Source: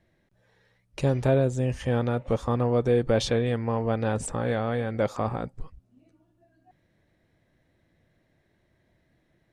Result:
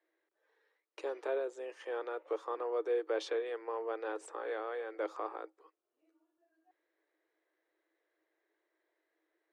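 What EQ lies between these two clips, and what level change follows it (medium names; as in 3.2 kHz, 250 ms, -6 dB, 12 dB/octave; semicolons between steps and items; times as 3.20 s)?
rippled Chebyshev high-pass 310 Hz, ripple 6 dB; treble shelf 7.6 kHz -11.5 dB; -6.5 dB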